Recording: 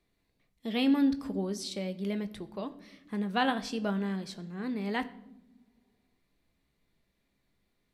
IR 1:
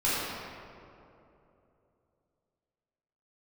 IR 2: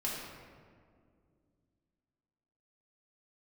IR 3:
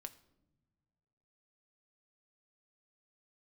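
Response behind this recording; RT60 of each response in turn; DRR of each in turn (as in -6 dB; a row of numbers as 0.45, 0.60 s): 3; 2.9 s, 2.2 s, not exponential; -11.5, -6.0, 9.0 dB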